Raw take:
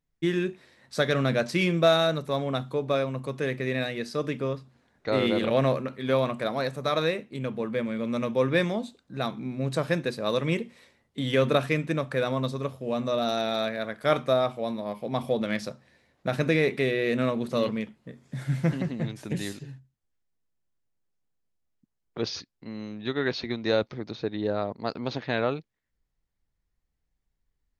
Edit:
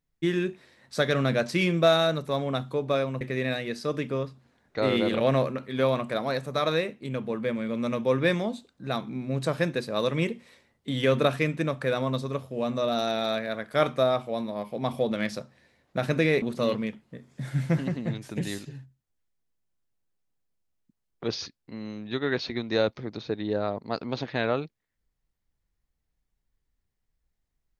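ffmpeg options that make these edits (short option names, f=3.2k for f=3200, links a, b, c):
-filter_complex "[0:a]asplit=3[a][b][c];[a]atrim=end=3.212[d];[b]atrim=start=3.508:end=16.722[e];[c]atrim=start=17.358[f];[d][e]acrossfade=d=0.004:c1=hsin:c2=hsin[g];[g][f]acrossfade=d=0.004:c1=hsin:c2=hsin"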